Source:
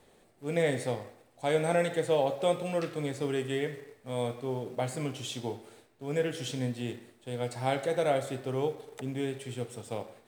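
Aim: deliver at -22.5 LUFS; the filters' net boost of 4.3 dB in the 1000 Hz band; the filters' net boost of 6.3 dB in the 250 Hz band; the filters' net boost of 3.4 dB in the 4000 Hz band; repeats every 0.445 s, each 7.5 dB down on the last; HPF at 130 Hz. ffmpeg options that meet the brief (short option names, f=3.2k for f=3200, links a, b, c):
-af "highpass=130,equalizer=f=250:t=o:g=8,equalizer=f=1k:t=o:g=5.5,equalizer=f=4k:t=o:g=4,aecho=1:1:445|890|1335|1780|2225:0.422|0.177|0.0744|0.0312|0.0131,volume=6dB"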